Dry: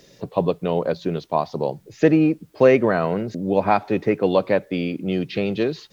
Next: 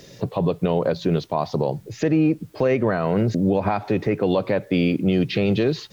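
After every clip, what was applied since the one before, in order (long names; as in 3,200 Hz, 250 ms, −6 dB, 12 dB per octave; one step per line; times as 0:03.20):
parametric band 110 Hz +7 dB 0.83 octaves
downward compressor, threshold −18 dBFS, peak gain reduction 9.5 dB
brickwall limiter −16 dBFS, peak gain reduction 8.5 dB
level +5.5 dB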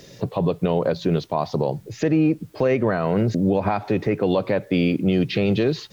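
no processing that can be heard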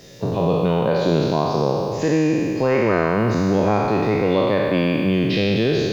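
peak hold with a decay on every bin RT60 2.80 s
level −1.5 dB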